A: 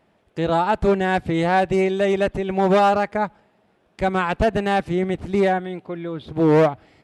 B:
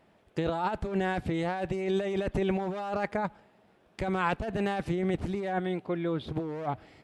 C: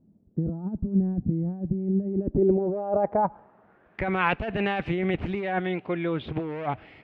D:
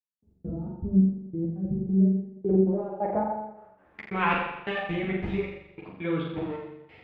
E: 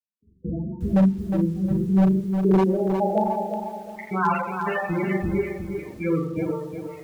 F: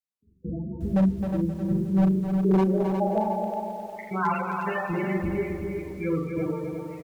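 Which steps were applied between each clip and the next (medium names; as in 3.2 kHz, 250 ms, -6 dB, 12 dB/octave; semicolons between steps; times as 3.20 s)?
compressor with a negative ratio -24 dBFS, ratio -1; trim -6 dB
low-pass sweep 220 Hz -> 2.6 kHz, 1.99–4.25 s; trim +2.5 dB
trance gate "..x.xx.xx." 135 bpm -60 dB; on a send: flutter echo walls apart 7.2 m, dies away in 0.89 s; on the sum: three-phase chorus
loudest bins only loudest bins 16; wavefolder -17 dBFS; bit-crushed delay 360 ms, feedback 35%, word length 9-bit, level -6.5 dB; trim +5 dB
feedback delay 264 ms, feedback 35%, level -7 dB; trim -3.5 dB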